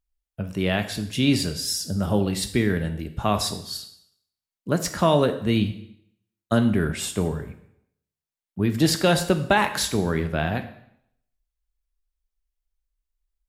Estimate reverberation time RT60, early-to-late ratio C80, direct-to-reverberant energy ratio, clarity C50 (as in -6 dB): 0.70 s, 14.5 dB, 8.0 dB, 11.5 dB